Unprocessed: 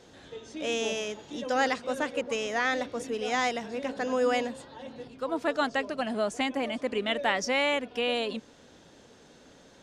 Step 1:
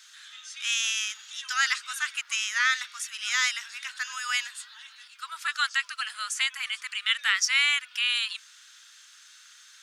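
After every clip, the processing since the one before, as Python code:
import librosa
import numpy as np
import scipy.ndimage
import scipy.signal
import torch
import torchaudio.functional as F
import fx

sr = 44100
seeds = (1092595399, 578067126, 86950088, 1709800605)

y = scipy.signal.sosfilt(scipy.signal.ellip(4, 1.0, 60, 1300.0, 'highpass', fs=sr, output='sos'), x)
y = fx.high_shelf(y, sr, hz=5900.0, db=10.5)
y = F.gain(torch.from_numpy(y), 5.5).numpy()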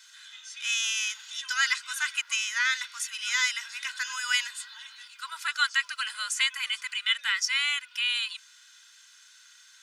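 y = x + 0.62 * np.pad(x, (int(2.0 * sr / 1000.0), 0))[:len(x)]
y = fx.rider(y, sr, range_db=3, speed_s=0.5)
y = F.gain(torch.from_numpy(y), -1.5).numpy()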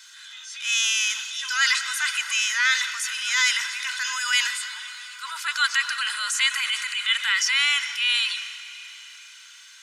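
y = fx.rev_plate(x, sr, seeds[0], rt60_s=4.9, hf_ratio=0.9, predelay_ms=110, drr_db=13.5)
y = fx.transient(y, sr, attack_db=-5, sustain_db=5)
y = F.gain(torch.from_numpy(y), 6.0).numpy()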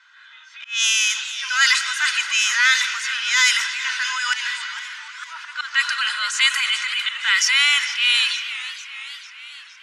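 y = fx.auto_swell(x, sr, attack_ms=187.0)
y = fx.env_lowpass(y, sr, base_hz=1400.0, full_db=-18.5)
y = fx.echo_warbled(y, sr, ms=455, feedback_pct=61, rate_hz=2.8, cents=184, wet_db=-14.5)
y = F.gain(torch.from_numpy(y), 4.5).numpy()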